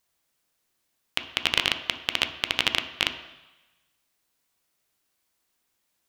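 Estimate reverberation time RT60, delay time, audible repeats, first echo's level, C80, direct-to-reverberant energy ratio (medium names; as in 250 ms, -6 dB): 1.1 s, no echo, no echo, no echo, 13.0 dB, 7.0 dB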